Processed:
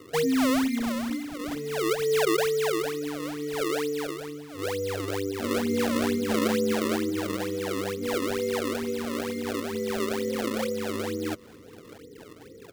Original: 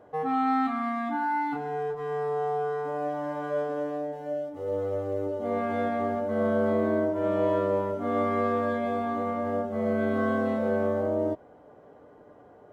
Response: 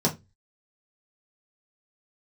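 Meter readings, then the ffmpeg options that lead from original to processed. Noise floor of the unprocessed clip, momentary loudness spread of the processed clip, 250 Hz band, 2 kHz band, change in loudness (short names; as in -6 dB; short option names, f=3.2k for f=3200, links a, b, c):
-53 dBFS, 10 LU, +2.0 dB, +3.0 dB, 0.0 dB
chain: -filter_complex "[0:a]afftfilt=real='re*(1-between(b*sr/4096,530,1800))':imag='im*(1-between(b*sr/4096,530,1800))':win_size=4096:overlap=0.75,lowpass=f=3.9k:w=0.5412,lowpass=f=3.9k:w=1.3066,acrossover=split=180|3000[a][b][c];[a]acompressor=threshold=-48dB:ratio=2.5[d];[d][b][c]amix=inputs=3:normalize=0,alimiter=level_in=1.5dB:limit=-24dB:level=0:latency=1:release=76,volume=-1.5dB,aphaser=in_gain=1:out_gain=1:delay=2.8:decay=0.39:speed=0.16:type=sinusoidal,acrusher=samples=32:mix=1:aa=0.000001:lfo=1:lforange=51.2:lforate=2.2,aecho=1:1:630:0.075,volume=4dB"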